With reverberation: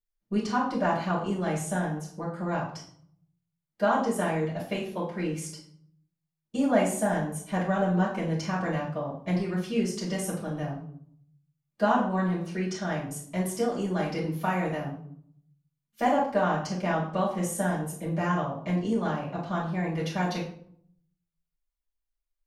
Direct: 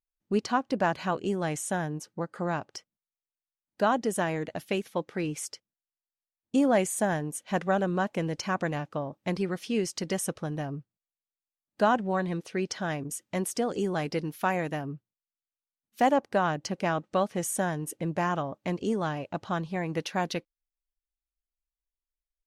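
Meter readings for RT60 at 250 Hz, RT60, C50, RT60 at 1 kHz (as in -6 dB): 0.85 s, 0.60 s, 6.0 dB, 0.60 s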